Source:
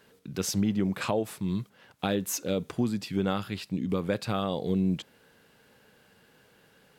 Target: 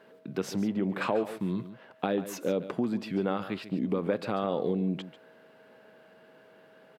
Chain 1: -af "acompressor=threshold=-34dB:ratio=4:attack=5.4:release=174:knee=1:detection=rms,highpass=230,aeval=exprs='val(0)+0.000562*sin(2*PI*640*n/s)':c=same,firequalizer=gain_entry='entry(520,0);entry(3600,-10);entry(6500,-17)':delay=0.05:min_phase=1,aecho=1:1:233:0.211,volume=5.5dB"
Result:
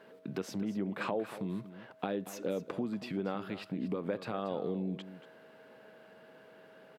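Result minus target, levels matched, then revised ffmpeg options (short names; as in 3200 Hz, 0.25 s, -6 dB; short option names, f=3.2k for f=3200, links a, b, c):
echo 91 ms late; compressor: peak gain reduction +6.5 dB
-af "acompressor=threshold=-25.5dB:ratio=4:attack=5.4:release=174:knee=1:detection=rms,highpass=230,aeval=exprs='val(0)+0.000562*sin(2*PI*640*n/s)':c=same,firequalizer=gain_entry='entry(520,0);entry(3600,-10);entry(6500,-17)':delay=0.05:min_phase=1,aecho=1:1:142:0.211,volume=5.5dB"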